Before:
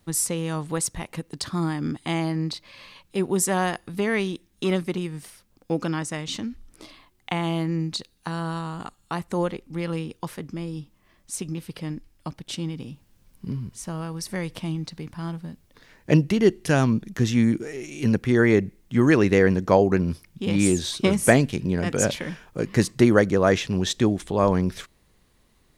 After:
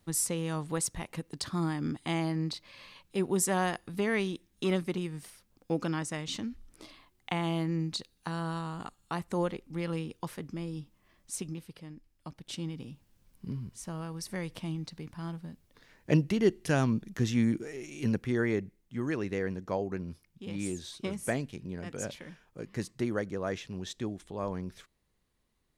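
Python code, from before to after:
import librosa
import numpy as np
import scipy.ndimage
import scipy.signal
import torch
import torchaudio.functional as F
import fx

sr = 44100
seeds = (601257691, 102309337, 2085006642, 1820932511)

y = fx.gain(x, sr, db=fx.line((11.4, -5.5), (11.9, -15.5), (12.56, -7.0), (17.97, -7.0), (18.94, -15.0)))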